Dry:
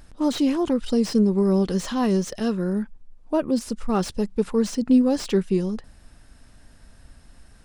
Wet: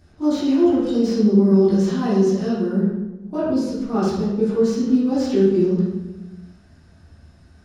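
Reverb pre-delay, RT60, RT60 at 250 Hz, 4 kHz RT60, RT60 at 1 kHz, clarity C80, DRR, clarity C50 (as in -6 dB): 3 ms, 1.1 s, 1.5 s, 0.80 s, 1.0 s, 3.5 dB, -12.5 dB, -0.5 dB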